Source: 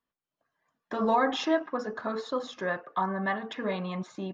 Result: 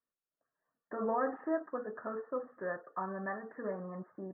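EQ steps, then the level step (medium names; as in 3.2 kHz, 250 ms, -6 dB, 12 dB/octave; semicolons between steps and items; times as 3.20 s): rippled Chebyshev low-pass 1.9 kHz, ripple 6 dB; -5.0 dB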